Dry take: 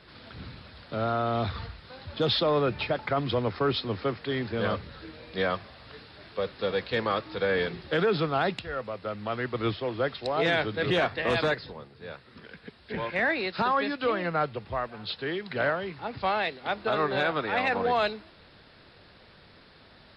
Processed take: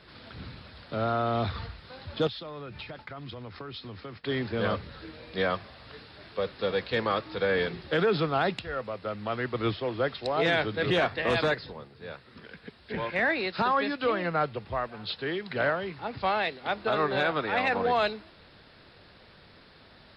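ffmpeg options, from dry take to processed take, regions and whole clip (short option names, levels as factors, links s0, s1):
-filter_complex "[0:a]asettb=1/sr,asplit=3[s0][s1][s2];[s0]atrim=end=2.274[s3];[s1]atrim=start=2.27:end=4.24,asetpts=PTS-STARTPTS,afade=t=in:d=0.004:c=qsin,afade=t=out:st=1.966:d=0.004:c=qsin,agate=range=0.0224:threshold=0.0126:ratio=3:release=100:detection=peak,equalizer=f=520:w=0.61:g=-5.5,acompressor=threshold=0.0141:ratio=8:attack=3.2:release=140:knee=1:detection=peak[s4];[s2]atrim=start=4.236[s5];[s3][s4]acrossfade=d=0.004:c1=hsin:c2=qsin[s6];[s6][s5]acrossfade=d=0.004:c1=qsin:c2=hsin"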